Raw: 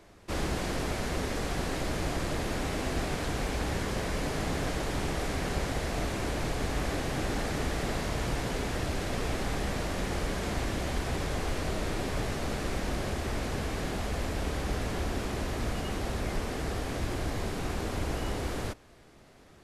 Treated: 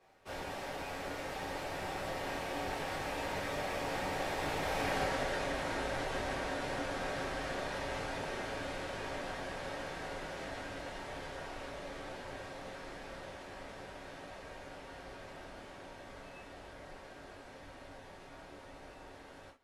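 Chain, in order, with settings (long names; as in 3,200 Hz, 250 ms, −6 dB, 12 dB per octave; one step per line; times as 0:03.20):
source passing by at 0:05.01, 35 m/s, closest 6.6 metres
bass and treble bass −13 dB, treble −8 dB
downward compressor 5 to 1, threshold −57 dBFS, peak gain reduction 21.5 dB
reverb whose tail is shaped and stops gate 90 ms falling, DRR −6 dB
level +15.5 dB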